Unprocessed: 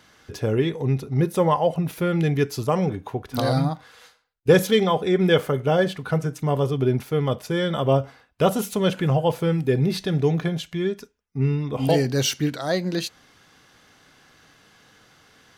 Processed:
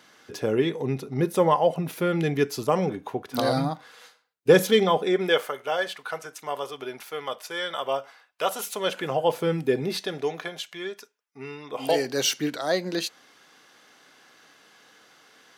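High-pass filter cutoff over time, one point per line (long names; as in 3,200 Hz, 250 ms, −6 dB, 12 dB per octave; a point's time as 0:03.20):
0:04.94 210 Hz
0:05.53 800 Hz
0:08.54 800 Hz
0:09.56 220 Hz
0:10.40 630 Hz
0:11.56 630 Hz
0:12.42 290 Hz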